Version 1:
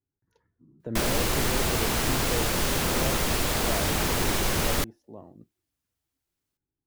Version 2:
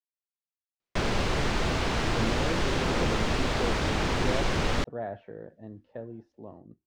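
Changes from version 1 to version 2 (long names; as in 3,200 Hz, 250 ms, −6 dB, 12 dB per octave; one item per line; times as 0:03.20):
speech: entry +1.30 s
master: add high-frequency loss of the air 130 metres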